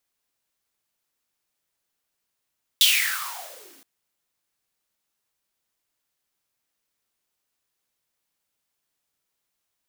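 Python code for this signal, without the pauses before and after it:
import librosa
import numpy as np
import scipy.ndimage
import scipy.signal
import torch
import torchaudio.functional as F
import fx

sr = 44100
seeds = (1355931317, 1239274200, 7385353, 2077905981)

y = fx.riser_noise(sr, seeds[0], length_s=1.02, colour='white', kind='highpass', start_hz=3500.0, end_hz=240.0, q=8.7, swell_db=-35, law='exponential')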